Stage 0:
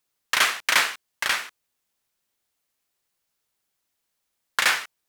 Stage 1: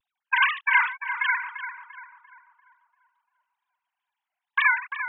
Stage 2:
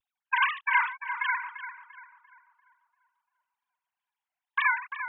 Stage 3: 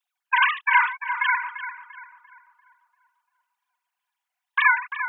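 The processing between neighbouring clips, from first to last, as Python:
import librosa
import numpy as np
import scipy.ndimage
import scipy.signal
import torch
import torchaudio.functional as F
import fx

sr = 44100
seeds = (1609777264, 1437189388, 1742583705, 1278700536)

y1 = fx.sine_speech(x, sr)
y1 = fx.wow_flutter(y1, sr, seeds[0], rate_hz=2.1, depth_cents=140.0)
y1 = fx.echo_filtered(y1, sr, ms=344, feedback_pct=55, hz=1400.0, wet_db=-7)
y2 = fx.dynamic_eq(y1, sr, hz=1000.0, q=3.0, threshold_db=-38.0, ratio=4.0, max_db=5)
y2 = y2 * librosa.db_to_amplitude(-5.5)
y3 = scipy.signal.sosfilt(scipy.signal.butter(2, 710.0, 'highpass', fs=sr, output='sos'), y2)
y3 = y3 + 0.31 * np.pad(y3, (int(4.1 * sr / 1000.0), 0))[:len(y3)]
y3 = y3 * librosa.db_to_amplitude(6.0)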